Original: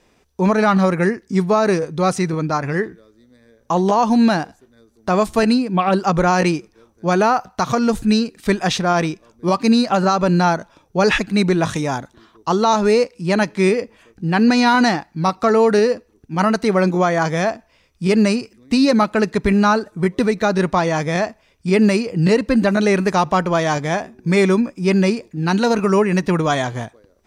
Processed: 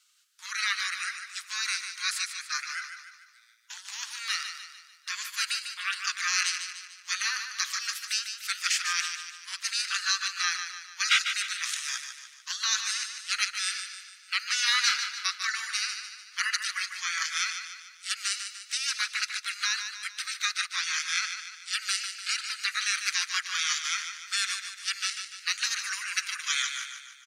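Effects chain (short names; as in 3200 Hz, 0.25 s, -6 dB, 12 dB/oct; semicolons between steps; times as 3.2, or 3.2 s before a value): rippled Chebyshev high-pass 1300 Hz, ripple 3 dB; spectral gate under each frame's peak -10 dB weak; feedback echo 0.148 s, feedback 49%, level -8 dB; gain +4.5 dB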